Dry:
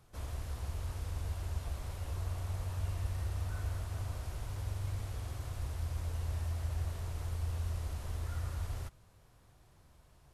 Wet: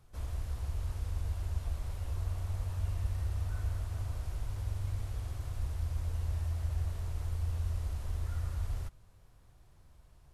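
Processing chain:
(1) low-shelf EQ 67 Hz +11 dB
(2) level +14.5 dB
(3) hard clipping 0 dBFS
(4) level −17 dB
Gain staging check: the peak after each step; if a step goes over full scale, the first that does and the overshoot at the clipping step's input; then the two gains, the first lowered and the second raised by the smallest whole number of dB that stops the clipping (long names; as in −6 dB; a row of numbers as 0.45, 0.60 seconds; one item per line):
−19.5, −5.0, −5.0, −22.0 dBFS
no step passes full scale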